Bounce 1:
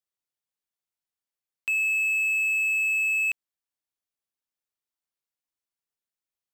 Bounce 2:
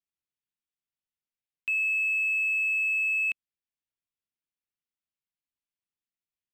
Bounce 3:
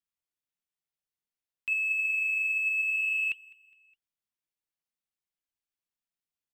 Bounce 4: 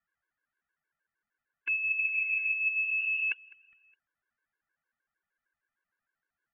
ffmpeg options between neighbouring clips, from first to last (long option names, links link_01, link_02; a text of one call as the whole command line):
ffmpeg -i in.wav -af "firequalizer=gain_entry='entry(220,0);entry(570,-12);entry(2600,-2);entry(4200,-8);entry(6800,-13)':delay=0.05:min_phase=1" out.wav
ffmpeg -i in.wav -af "flanger=delay=0.6:depth=6:regen=82:speed=0.55:shape=sinusoidal,aecho=1:1:206|412|618:0.0794|0.0373|0.0175,volume=3dB" out.wav
ffmpeg -i in.wav -af "lowpass=frequency=1600:width_type=q:width=8.9,afftfilt=real='re*gt(sin(2*PI*6.5*pts/sr)*(1-2*mod(floor(b*sr/1024/290),2)),0)':imag='im*gt(sin(2*PI*6.5*pts/sr)*(1-2*mod(floor(b*sr/1024/290),2)),0)':win_size=1024:overlap=0.75,volume=8.5dB" out.wav